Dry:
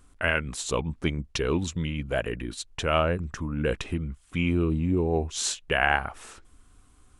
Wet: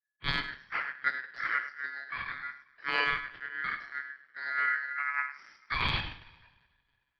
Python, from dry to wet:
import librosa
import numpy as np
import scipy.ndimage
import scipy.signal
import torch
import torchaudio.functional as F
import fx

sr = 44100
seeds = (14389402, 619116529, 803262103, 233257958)

y = fx.spec_trails(x, sr, decay_s=0.32)
y = fx.peak_eq(y, sr, hz=2200.0, db=-6.5, octaves=2.8)
y = fx.pitch_keep_formants(y, sr, semitones=4.5)
y = fx.env_lowpass(y, sr, base_hz=520.0, full_db=-25.0)
y = fx.rev_double_slope(y, sr, seeds[0], early_s=0.27, late_s=3.2, knee_db=-17, drr_db=0.5)
y = fx.vibrato(y, sr, rate_hz=0.47, depth_cents=6.3)
y = fx.lpc_monotone(y, sr, seeds[1], pitch_hz=140.0, order=16)
y = y * np.sin(2.0 * np.pi * 1700.0 * np.arange(len(y)) / sr)
y = fx.transient(y, sr, attack_db=2, sustain_db=-5)
y = y + 10.0 ** (-10.0 / 20.0) * np.pad(y, (int(103 * sr / 1000.0), 0))[:len(y)]
y = fx.rider(y, sr, range_db=10, speed_s=2.0)
y = fx.band_widen(y, sr, depth_pct=100)
y = F.gain(torch.from_numpy(y), -7.5).numpy()